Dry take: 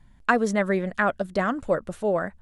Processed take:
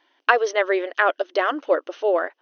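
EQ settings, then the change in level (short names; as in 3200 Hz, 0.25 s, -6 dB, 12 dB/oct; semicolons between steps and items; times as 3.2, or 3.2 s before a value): brick-wall FIR band-pass 280–6400 Hz; bell 3000 Hz +9.5 dB 0.34 oct; +4.0 dB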